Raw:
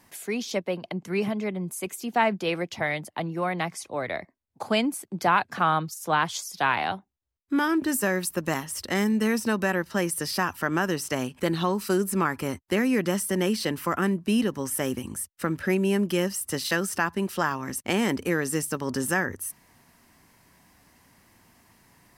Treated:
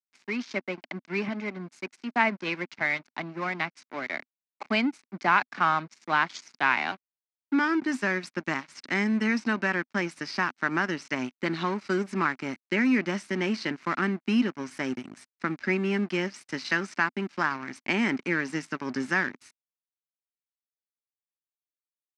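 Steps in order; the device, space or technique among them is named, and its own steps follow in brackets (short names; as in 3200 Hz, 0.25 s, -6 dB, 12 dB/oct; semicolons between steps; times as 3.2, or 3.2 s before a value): blown loudspeaker (crossover distortion -36.5 dBFS; speaker cabinet 190–5600 Hz, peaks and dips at 250 Hz +5 dB, 490 Hz -10 dB, 710 Hz -4 dB, 1500 Hz +3 dB, 2200 Hz +7 dB, 3300 Hz -5 dB)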